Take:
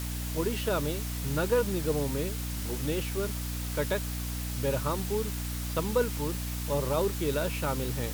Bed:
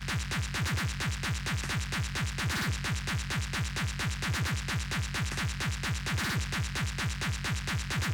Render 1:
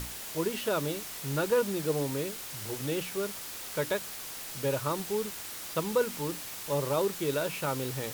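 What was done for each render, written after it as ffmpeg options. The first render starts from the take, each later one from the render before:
-af "bandreject=f=60:t=h:w=6,bandreject=f=120:t=h:w=6,bandreject=f=180:t=h:w=6,bandreject=f=240:t=h:w=6,bandreject=f=300:t=h:w=6"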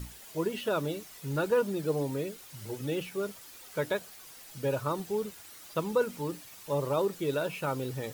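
-af "afftdn=nr=11:nf=-41"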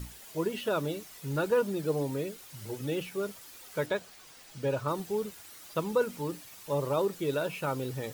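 -filter_complex "[0:a]asettb=1/sr,asplit=3[a][b][c];[a]atrim=end=3.864[d];[b]atrim=start=3.86:end=4.88,asetpts=PTS-STARTPTS,afade=t=in:d=0.004:c=qsin,afade=t=out:st=1.016:d=0.004:c=qsin,equalizer=f=13k:t=o:w=0.89:g=-9.5[e];[c]atrim=start=4.876[f];[d][e]acrossfade=d=0.004:c1=hsin:c2=qsin[g];[g][f]acrossfade=d=0.004:c1=qsin:c2=hsin"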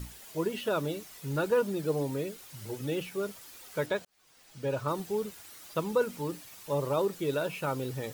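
-filter_complex "[0:a]asplit=2[a][b];[a]atrim=end=4.05,asetpts=PTS-STARTPTS,afade=t=out:st=4.046:d=0.004:c=hsin[c];[b]atrim=start=4.05,asetpts=PTS-STARTPTS,afade=t=in:d=0.77[d];[c][d]concat=n=2:v=0:a=1"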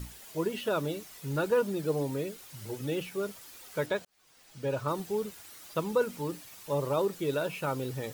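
-af anull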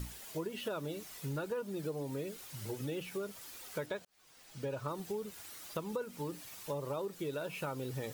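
-af "acompressor=threshold=-36dB:ratio=5"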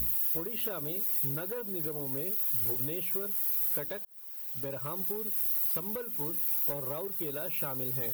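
-af "volume=33dB,asoftclip=hard,volume=-33dB,aexciter=amount=10.3:drive=7:freq=11k"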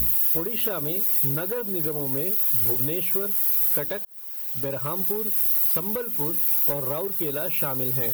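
-af "volume=8.5dB"

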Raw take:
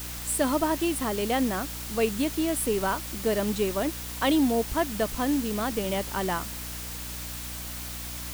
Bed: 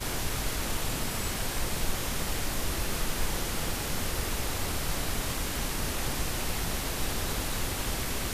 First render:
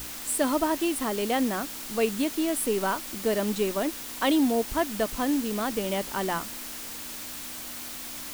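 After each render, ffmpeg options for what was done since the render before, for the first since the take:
-af "bandreject=f=60:t=h:w=6,bandreject=f=120:t=h:w=6,bandreject=f=180:t=h:w=6"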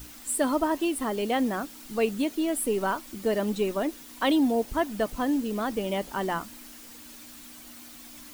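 -af "afftdn=nr=10:nf=-38"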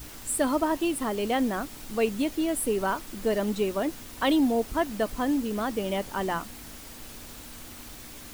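-filter_complex "[1:a]volume=-15.5dB[a];[0:a][a]amix=inputs=2:normalize=0"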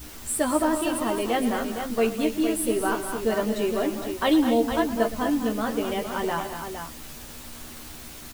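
-filter_complex "[0:a]asplit=2[a][b];[b]adelay=13,volume=-5dB[c];[a][c]amix=inputs=2:normalize=0,aecho=1:1:115|205|241|461:0.178|0.282|0.299|0.398"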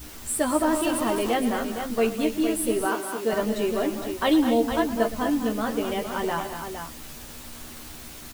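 -filter_complex "[0:a]asettb=1/sr,asplit=3[a][b][c];[a]atrim=end=0.674[d];[b]atrim=start=0.67:end=1.34,asetpts=PTS-STARTPTS,afade=t=in:d=0.004:c=qsin,afade=t=out:st=0.666:d=0.004:c=qsin,aeval=exprs='val(0)+0.5*0.0211*sgn(val(0))':c=same[e];[c]atrim=start=1.336[f];[d][e]acrossfade=d=0.004:c1=hsin:c2=qsin[g];[g][f]acrossfade=d=0.004:c1=qsin:c2=hsin,asettb=1/sr,asplit=3[h][i][j];[h]atrim=end=2.854[k];[i]atrim=start=2.85:end=3.33,asetpts=PTS-STARTPTS,afade=t=in:d=0.004:c=qsin,afade=t=out:st=0.476:d=0.004:c=qsin,highpass=230[l];[j]atrim=start=3.326[m];[k][l]acrossfade=d=0.004:c1=hsin:c2=qsin[n];[n][m]acrossfade=d=0.004:c1=qsin:c2=hsin"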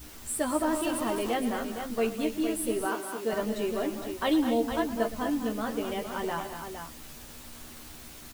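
-af "volume=-5dB"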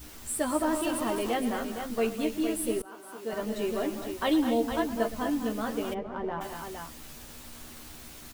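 -filter_complex "[0:a]asplit=3[a][b][c];[a]afade=t=out:st=5.93:d=0.02[d];[b]adynamicsmooth=sensitivity=0.5:basefreq=1.3k,afade=t=in:st=5.93:d=0.02,afade=t=out:st=6.4:d=0.02[e];[c]afade=t=in:st=6.4:d=0.02[f];[d][e][f]amix=inputs=3:normalize=0,asplit=2[g][h];[g]atrim=end=2.82,asetpts=PTS-STARTPTS,afade=t=out:st=2.816:d=0.004:c=hsin:silence=0.0668344[i];[h]atrim=start=2.82,asetpts=PTS-STARTPTS,afade=t=in:d=0.84:silence=0.0668344[j];[i][j]concat=n=2:v=0:a=1"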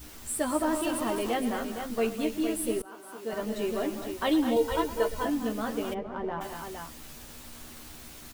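-filter_complex "[0:a]asettb=1/sr,asplit=3[a][b][c];[a]atrim=end=4.564[d];[b]atrim=start=4.56:end=5.25,asetpts=PTS-STARTPTS,afade=t=in:d=0.004:c=qsin,afade=t=out:st=0.686:d=0.004:c=qsin,aecho=1:1:2.1:0.78,atrim=end_sample=30429[e];[c]atrim=start=5.246[f];[d][e]acrossfade=d=0.004:c1=hsin:c2=qsin[g];[g][f]acrossfade=d=0.004:c1=qsin:c2=hsin"

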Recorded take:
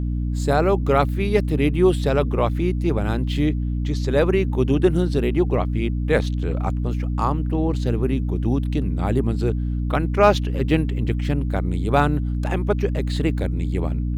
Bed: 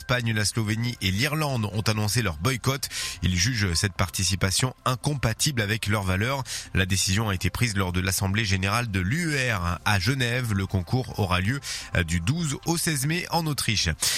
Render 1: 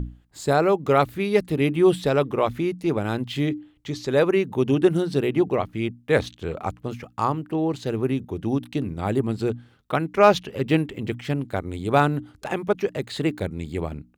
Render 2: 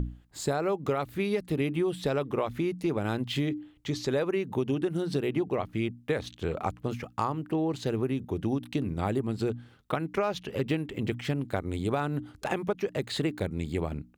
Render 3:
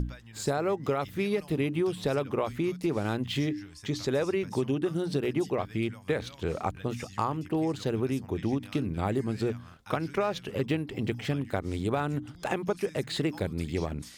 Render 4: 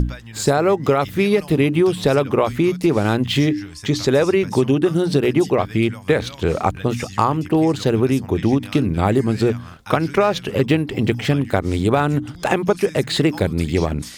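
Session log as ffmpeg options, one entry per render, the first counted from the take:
-af "bandreject=f=60:t=h:w=6,bandreject=f=120:t=h:w=6,bandreject=f=180:t=h:w=6,bandreject=f=240:t=h:w=6,bandreject=f=300:t=h:w=6"
-af "alimiter=limit=-10.5dB:level=0:latency=1:release=247,acompressor=threshold=-25dB:ratio=6"
-filter_complex "[1:a]volume=-25dB[a];[0:a][a]amix=inputs=2:normalize=0"
-af "volume=12dB"

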